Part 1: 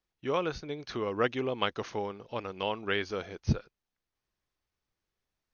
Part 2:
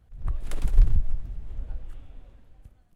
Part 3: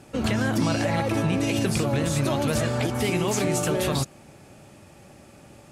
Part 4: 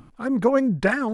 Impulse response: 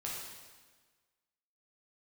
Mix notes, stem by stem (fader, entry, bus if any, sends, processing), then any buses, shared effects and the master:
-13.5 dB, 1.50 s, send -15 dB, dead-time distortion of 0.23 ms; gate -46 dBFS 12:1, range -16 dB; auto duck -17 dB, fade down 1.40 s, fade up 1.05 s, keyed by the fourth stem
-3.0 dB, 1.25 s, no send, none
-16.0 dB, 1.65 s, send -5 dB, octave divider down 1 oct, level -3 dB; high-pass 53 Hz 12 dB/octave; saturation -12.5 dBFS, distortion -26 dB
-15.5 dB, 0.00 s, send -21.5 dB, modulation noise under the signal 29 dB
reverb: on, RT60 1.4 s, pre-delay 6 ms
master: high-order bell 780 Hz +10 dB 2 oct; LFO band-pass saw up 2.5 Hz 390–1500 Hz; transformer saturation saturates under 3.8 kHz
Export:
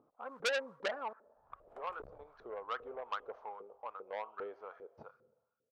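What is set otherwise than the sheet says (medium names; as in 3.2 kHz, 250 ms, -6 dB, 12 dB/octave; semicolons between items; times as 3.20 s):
stem 1: missing dead-time distortion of 0.23 ms; stem 2 -3.0 dB -> -10.0 dB; stem 3: muted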